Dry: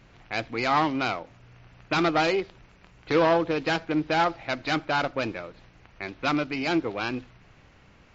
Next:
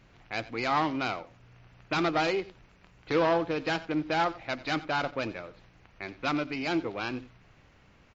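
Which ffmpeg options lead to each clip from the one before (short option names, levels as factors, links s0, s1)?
-af "aecho=1:1:90:0.126,volume=0.631"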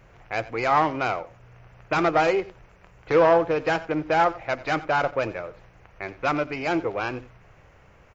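-af "equalizer=f=250:t=o:w=1:g=-9,equalizer=f=500:t=o:w=1:g=4,equalizer=f=4000:t=o:w=1:g=-11,volume=2.24"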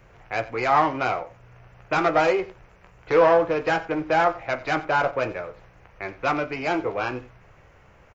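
-filter_complex "[0:a]acrossover=split=350|2800[s0][s1][s2];[s0]asoftclip=type=hard:threshold=0.0335[s3];[s1]aecho=1:1:16|45:0.531|0.237[s4];[s3][s4][s2]amix=inputs=3:normalize=0"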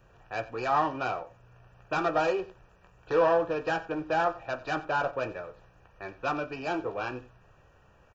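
-af "asuperstop=centerf=2100:order=20:qfactor=5.3,volume=0.473"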